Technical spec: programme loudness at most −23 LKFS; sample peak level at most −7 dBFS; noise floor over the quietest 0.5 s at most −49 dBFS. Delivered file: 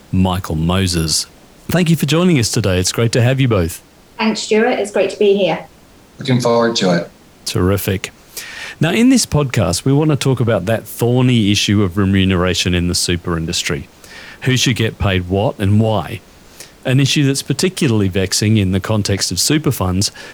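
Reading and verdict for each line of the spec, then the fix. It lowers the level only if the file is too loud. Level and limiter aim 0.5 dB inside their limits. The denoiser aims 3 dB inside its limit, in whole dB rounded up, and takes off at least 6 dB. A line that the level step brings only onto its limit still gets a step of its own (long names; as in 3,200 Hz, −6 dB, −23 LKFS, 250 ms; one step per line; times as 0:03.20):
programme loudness −15.0 LKFS: out of spec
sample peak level −4.0 dBFS: out of spec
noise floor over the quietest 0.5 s −44 dBFS: out of spec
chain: level −8.5 dB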